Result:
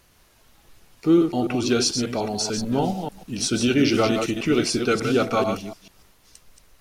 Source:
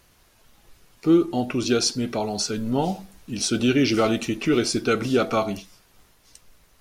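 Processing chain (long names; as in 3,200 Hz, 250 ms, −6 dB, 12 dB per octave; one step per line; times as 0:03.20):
delay that plays each chunk backwards 147 ms, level −6 dB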